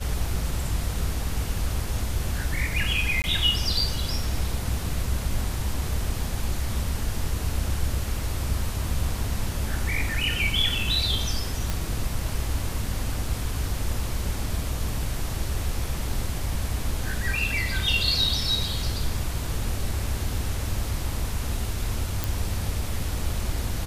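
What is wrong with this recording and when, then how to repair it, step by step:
3.22–3.24 gap 19 ms
11.7 pop
22.24 pop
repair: de-click; interpolate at 3.22, 19 ms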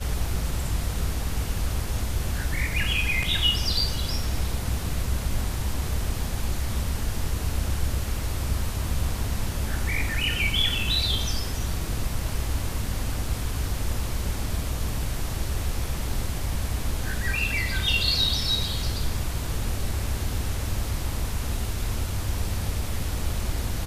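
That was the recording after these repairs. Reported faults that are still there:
none

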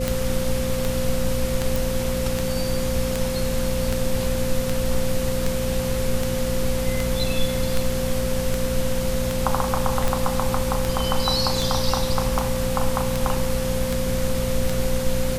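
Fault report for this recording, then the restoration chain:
hum 60 Hz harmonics 4 -28 dBFS
tick 78 rpm
tone 520 Hz -26 dBFS
1.76 pop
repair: de-click; de-hum 60 Hz, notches 4; notch 520 Hz, Q 30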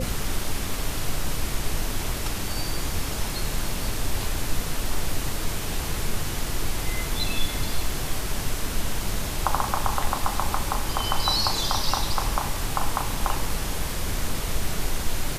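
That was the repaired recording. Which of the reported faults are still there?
none

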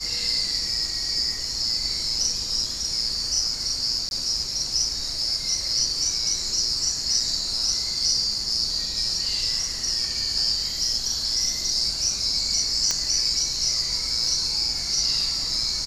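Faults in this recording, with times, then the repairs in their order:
4.09–4.11 gap 21 ms
12.91 pop -8 dBFS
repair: de-click; interpolate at 4.09, 21 ms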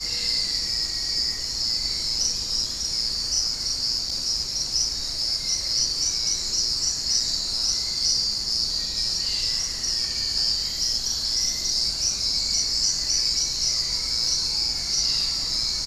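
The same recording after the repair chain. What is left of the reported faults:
none

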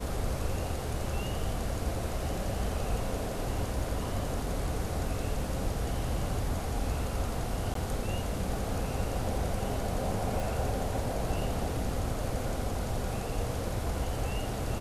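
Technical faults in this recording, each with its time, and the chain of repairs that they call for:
7.74–7.75 gap 13 ms
10.4 pop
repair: de-click; interpolate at 7.74, 13 ms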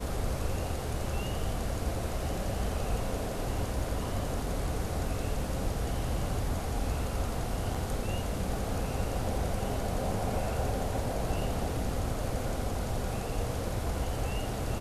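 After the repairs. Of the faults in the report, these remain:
10.4 pop

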